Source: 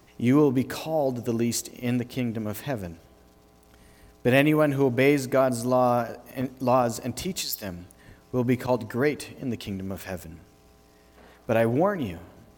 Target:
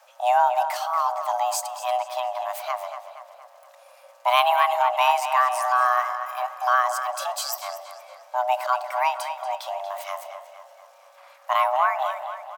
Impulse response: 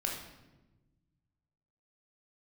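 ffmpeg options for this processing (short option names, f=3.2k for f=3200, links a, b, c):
-filter_complex "[0:a]asplit=2[a][b];[b]adelay=235,lowpass=f=4.9k:p=1,volume=-9.5dB,asplit=2[c][d];[d]adelay=235,lowpass=f=4.9k:p=1,volume=0.53,asplit=2[e][f];[f]adelay=235,lowpass=f=4.9k:p=1,volume=0.53,asplit=2[g][h];[h]adelay=235,lowpass=f=4.9k:p=1,volume=0.53,asplit=2[i][j];[j]adelay=235,lowpass=f=4.9k:p=1,volume=0.53,asplit=2[k][l];[l]adelay=235,lowpass=f=4.9k:p=1,volume=0.53[m];[a][c][e][g][i][k][m]amix=inputs=7:normalize=0,asplit=2[n][o];[1:a]atrim=start_sample=2205[p];[o][p]afir=irnorm=-1:irlink=0,volume=-21.5dB[q];[n][q]amix=inputs=2:normalize=0,afreqshift=500"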